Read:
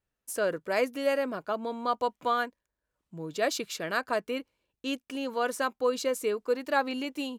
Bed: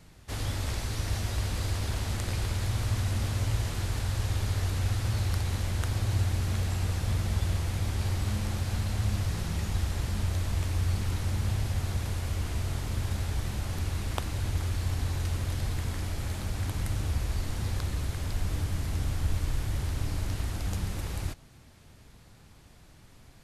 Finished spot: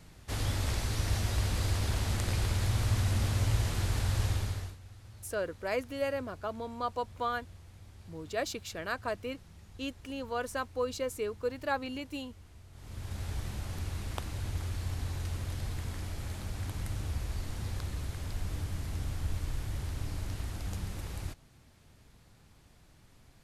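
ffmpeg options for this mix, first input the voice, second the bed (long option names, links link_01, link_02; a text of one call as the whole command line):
ffmpeg -i stem1.wav -i stem2.wav -filter_complex "[0:a]adelay=4950,volume=-5.5dB[link_01];[1:a]volume=17dB,afade=type=out:start_time=4.24:duration=0.53:silence=0.0749894,afade=type=in:start_time=12.72:duration=0.58:silence=0.141254[link_02];[link_01][link_02]amix=inputs=2:normalize=0" out.wav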